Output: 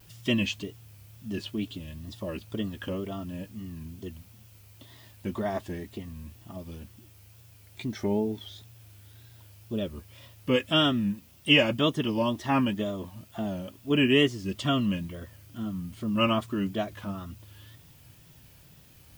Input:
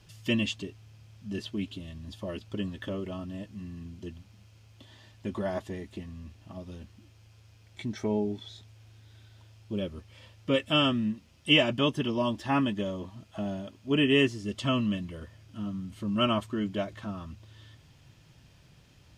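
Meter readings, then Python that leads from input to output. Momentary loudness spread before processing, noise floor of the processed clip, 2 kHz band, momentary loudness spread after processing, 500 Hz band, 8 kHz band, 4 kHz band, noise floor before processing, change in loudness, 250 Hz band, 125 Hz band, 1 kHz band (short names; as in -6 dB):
20 LU, -55 dBFS, +2.0 dB, 20 LU, +1.5 dB, +2.5 dB, +1.5 dB, -58 dBFS, +1.5 dB, +1.5 dB, +1.5 dB, +1.5 dB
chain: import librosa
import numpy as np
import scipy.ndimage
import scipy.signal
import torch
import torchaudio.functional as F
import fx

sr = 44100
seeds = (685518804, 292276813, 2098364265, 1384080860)

y = fx.dmg_noise_colour(x, sr, seeds[0], colour='violet', level_db=-60.0)
y = fx.wow_flutter(y, sr, seeds[1], rate_hz=2.1, depth_cents=110.0)
y = y * librosa.db_to_amplitude(1.5)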